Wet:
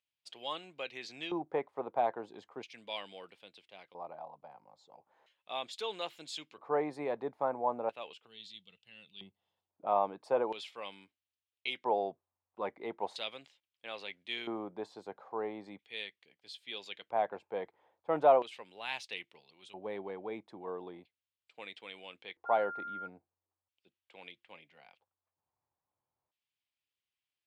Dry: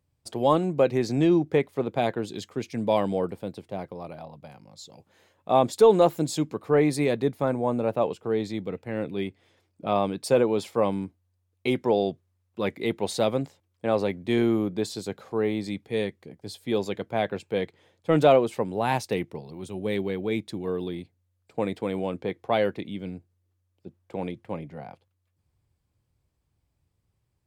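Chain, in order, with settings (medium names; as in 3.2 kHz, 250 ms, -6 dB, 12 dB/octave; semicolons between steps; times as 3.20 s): 8.26–9.70 s: time-frequency box 230–2600 Hz -14 dB; LFO band-pass square 0.38 Hz 880–3000 Hz; 22.45–23.06 s: whistle 1.4 kHz -39 dBFS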